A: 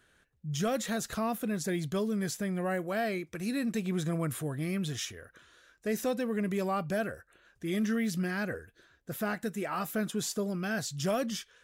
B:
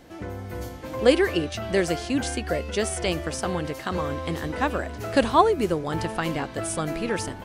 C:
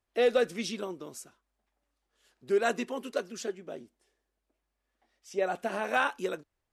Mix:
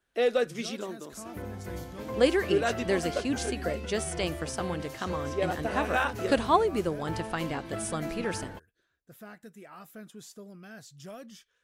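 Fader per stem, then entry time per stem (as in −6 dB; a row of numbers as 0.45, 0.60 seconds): −14.0, −5.0, −0.5 decibels; 0.00, 1.15, 0.00 seconds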